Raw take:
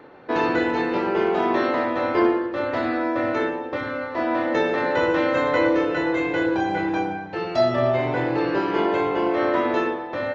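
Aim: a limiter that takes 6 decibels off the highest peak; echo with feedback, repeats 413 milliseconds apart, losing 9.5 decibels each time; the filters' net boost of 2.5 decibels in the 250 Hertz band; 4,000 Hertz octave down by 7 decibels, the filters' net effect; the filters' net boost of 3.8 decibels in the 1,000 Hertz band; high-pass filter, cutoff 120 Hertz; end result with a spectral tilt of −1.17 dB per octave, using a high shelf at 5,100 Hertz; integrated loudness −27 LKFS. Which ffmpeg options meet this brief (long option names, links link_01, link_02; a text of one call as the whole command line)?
ffmpeg -i in.wav -af "highpass=120,equalizer=frequency=250:width_type=o:gain=3.5,equalizer=frequency=1000:width_type=o:gain=5,equalizer=frequency=4000:width_type=o:gain=-7,highshelf=frequency=5100:gain=-7,alimiter=limit=-12dB:level=0:latency=1,aecho=1:1:413|826|1239|1652:0.335|0.111|0.0365|0.012,volume=-6dB" out.wav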